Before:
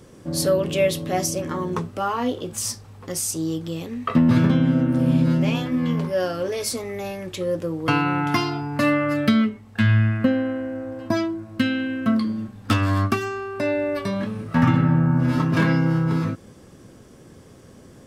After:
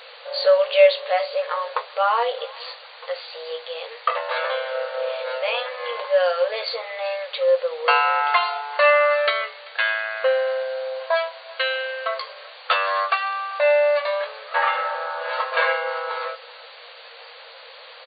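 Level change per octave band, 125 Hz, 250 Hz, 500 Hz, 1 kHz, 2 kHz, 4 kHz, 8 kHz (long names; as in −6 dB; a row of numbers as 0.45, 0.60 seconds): below −40 dB, below −40 dB, +5.5 dB, +6.0 dB, +6.0 dB, +5.0 dB, below −40 dB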